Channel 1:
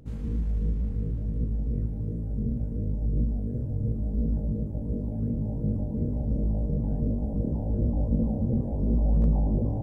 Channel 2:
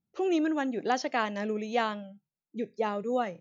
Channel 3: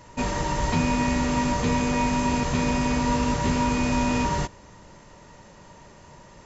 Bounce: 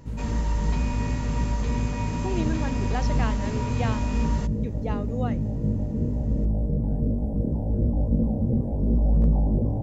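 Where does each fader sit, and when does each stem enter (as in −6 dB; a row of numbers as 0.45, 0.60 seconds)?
+2.5, −4.0, −9.5 decibels; 0.00, 2.05, 0.00 seconds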